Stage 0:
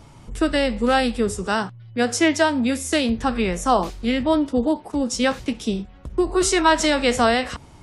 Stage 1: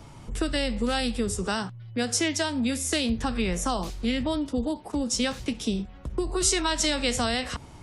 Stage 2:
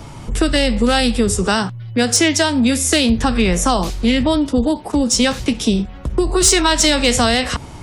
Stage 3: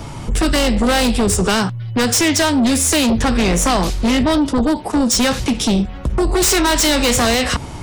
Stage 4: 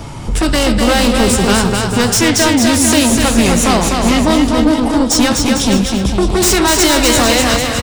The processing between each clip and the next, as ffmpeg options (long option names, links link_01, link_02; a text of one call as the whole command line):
ffmpeg -i in.wav -filter_complex "[0:a]acrossover=split=170|3000[link_01][link_02][link_03];[link_02]acompressor=threshold=-27dB:ratio=6[link_04];[link_01][link_04][link_03]amix=inputs=3:normalize=0" out.wav
ffmpeg -i in.wav -af "aeval=exprs='0.335*sin(PI/2*1.41*val(0)/0.335)':channel_layout=same,volume=5dB" out.wav
ffmpeg -i in.wav -af "aeval=exprs='0.631*(cos(1*acos(clip(val(0)/0.631,-1,1)))-cos(1*PI/2))+0.251*(cos(5*acos(clip(val(0)/0.631,-1,1)))-cos(5*PI/2))':channel_layout=same,volume=-5dB" out.wav
ffmpeg -i in.wav -af "aecho=1:1:250|450|610|738|840.4:0.631|0.398|0.251|0.158|0.1,volume=2dB" out.wav